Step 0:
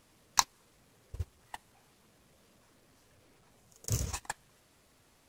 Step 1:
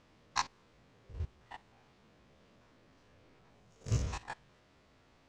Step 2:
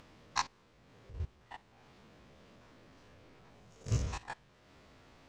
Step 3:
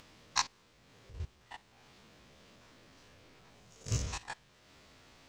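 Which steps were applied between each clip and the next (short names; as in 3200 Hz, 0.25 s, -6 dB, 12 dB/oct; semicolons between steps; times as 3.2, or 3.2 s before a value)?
stepped spectrum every 50 ms; air absorption 150 m; gain +3 dB
upward compressor, threshold -52 dBFS
high shelf 2400 Hz +10 dB; gain -2 dB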